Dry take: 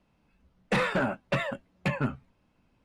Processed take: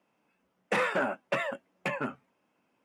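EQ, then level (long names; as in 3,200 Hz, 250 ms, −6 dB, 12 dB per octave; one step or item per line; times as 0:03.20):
high-pass filter 310 Hz 12 dB per octave
parametric band 4,100 Hz −8 dB 0.45 octaves
0.0 dB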